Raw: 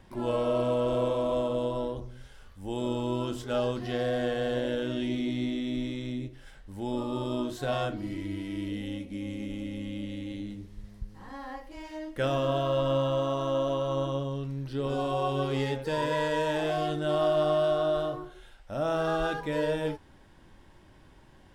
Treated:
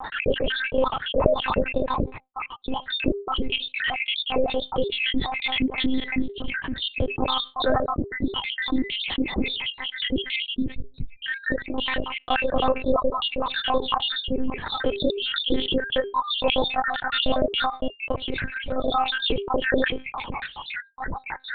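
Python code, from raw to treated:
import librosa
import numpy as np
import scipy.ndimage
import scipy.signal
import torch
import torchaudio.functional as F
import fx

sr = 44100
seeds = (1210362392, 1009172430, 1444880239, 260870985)

y = fx.spec_dropout(x, sr, seeds[0], share_pct=81)
y = fx.step_gate(y, sr, bpm=135, pattern='.xx.xx.x..xx.xxx', floor_db=-12.0, edge_ms=4.5)
y = fx.comb_fb(y, sr, f0_hz=400.0, decay_s=0.24, harmonics='all', damping=0.0, mix_pct=40)
y = fx.lpc_monotone(y, sr, seeds[1], pitch_hz=260.0, order=8)
y = fx.env_flatten(y, sr, amount_pct=70)
y = y * librosa.db_to_amplitude(8.5)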